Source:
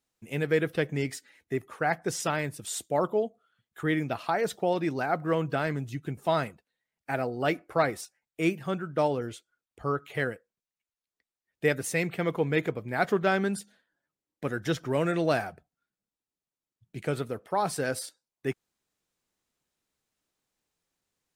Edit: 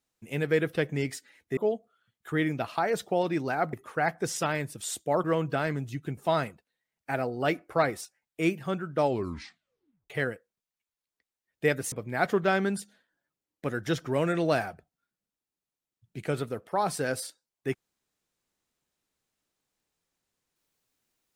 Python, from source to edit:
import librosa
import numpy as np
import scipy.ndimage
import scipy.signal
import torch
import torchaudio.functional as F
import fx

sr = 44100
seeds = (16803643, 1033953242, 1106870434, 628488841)

y = fx.edit(x, sr, fx.move(start_s=1.57, length_s=1.51, to_s=5.24),
    fx.tape_stop(start_s=9.01, length_s=1.09),
    fx.cut(start_s=11.92, length_s=0.79), tone=tone)